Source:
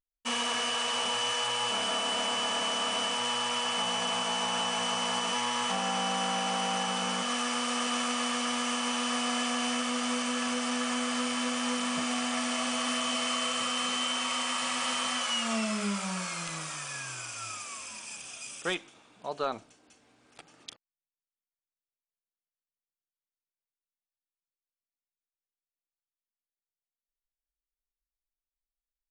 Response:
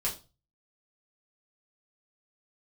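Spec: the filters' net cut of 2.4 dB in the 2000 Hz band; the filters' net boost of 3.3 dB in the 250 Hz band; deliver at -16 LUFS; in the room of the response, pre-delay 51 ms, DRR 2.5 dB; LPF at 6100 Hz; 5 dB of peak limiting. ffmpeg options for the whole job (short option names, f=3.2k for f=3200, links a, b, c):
-filter_complex "[0:a]lowpass=6.1k,equalizer=f=250:t=o:g=3.5,equalizer=f=2k:t=o:g=-3,alimiter=limit=-23.5dB:level=0:latency=1,asplit=2[a][b];[1:a]atrim=start_sample=2205,adelay=51[c];[b][c]afir=irnorm=-1:irlink=0,volume=-7.5dB[d];[a][d]amix=inputs=2:normalize=0,volume=13.5dB"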